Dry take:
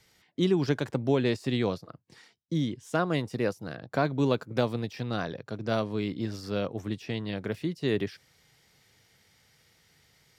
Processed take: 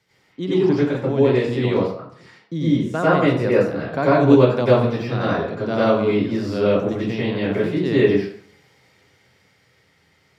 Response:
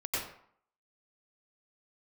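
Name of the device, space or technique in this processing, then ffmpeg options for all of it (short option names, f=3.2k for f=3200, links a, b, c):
far laptop microphone: -filter_complex "[1:a]atrim=start_sample=2205[a];[0:a][a]afir=irnorm=-1:irlink=0,highpass=100,dynaudnorm=f=390:g=11:m=6.5dB,highshelf=f=4.3k:g=-10.5,volume=2dB"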